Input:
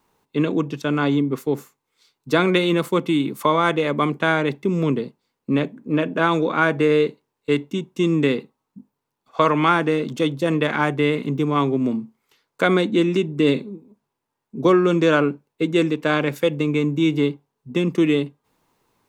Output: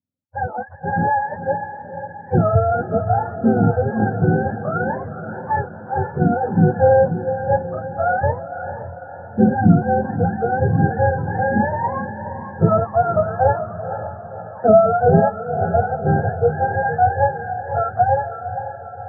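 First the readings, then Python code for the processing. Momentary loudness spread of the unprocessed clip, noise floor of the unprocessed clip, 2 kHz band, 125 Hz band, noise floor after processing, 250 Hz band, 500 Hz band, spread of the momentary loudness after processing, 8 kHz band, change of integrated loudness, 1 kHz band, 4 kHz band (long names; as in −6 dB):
9 LU, −80 dBFS, −2.5 dB, +6.0 dB, −36 dBFS, −1.5 dB, +2.5 dB, 15 LU, can't be measured, +1.5 dB, +6.5 dB, below −40 dB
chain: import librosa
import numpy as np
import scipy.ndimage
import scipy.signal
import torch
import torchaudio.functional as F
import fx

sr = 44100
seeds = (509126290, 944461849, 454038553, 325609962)

y = fx.octave_mirror(x, sr, pivot_hz=490.0)
y = fx.echo_diffused(y, sr, ms=499, feedback_pct=65, wet_db=-6)
y = fx.spectral_expand(y, sr, expansion=1.5)
y = y * librosa.db_to_amplitude(3.5)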